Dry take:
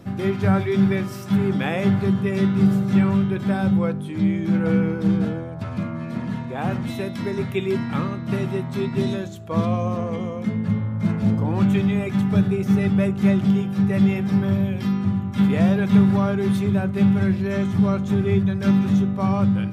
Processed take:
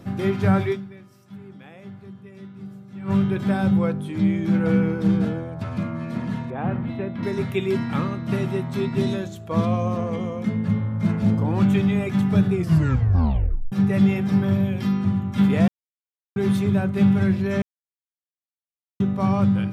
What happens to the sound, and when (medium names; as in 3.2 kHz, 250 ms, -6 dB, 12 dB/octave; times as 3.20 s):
0.72–3.11 s: dip -21 dB, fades 0.32 s exponential
6.50–7.23 s: distance through air 480 m
12.52 s: tape stop 1.20 s
15.68–16.36 s: mute
17.62–19.00 s: mute